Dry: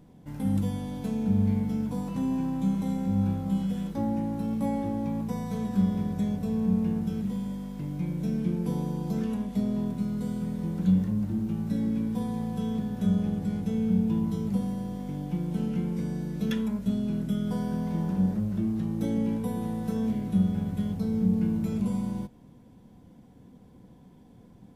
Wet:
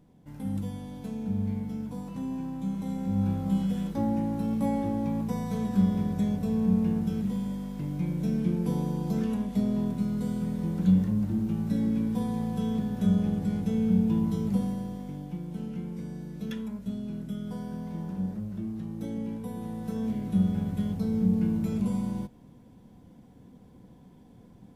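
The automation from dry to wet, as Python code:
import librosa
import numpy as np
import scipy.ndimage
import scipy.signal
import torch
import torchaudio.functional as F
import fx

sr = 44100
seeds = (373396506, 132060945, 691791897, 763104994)

y = fx.gain(x, sr, db=fx.line((2.66, -5.5), (3.46, 1.0), (14.62, 1.0), (15.42, -6.5), (19.39, -6.5), (20.48, 0.0)))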